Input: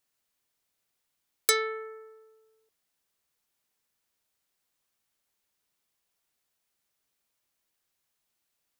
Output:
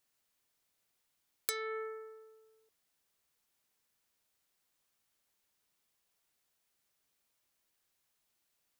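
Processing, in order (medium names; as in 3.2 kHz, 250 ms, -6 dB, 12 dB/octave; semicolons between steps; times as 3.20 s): compression 16:1, threshold -32 dBFS, peak gain reduction 15.5 dB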